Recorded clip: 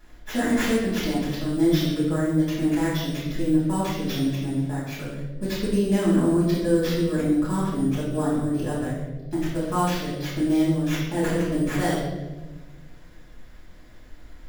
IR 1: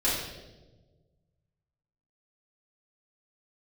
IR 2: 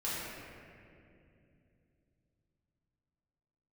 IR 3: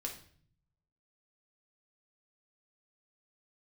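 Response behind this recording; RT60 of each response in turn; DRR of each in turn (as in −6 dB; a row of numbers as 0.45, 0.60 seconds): 1; 1.3, 2.6, 0.55 seconds; −9.0, −9.5, 0.5 decibels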